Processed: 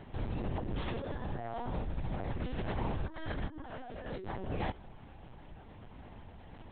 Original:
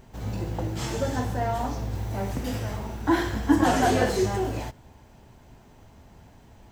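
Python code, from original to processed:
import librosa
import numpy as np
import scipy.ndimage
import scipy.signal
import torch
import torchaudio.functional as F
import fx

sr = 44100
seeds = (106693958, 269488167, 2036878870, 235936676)

y = fx.over_compress(x, sr, threshold_db=-33.0, ratio=-1.0)
y = fx.lpc_vocoder(y, sr, seeds[0], excitation='pitch_kept', order=10)
y = y * librosa.db_to_amplitude(-5.0)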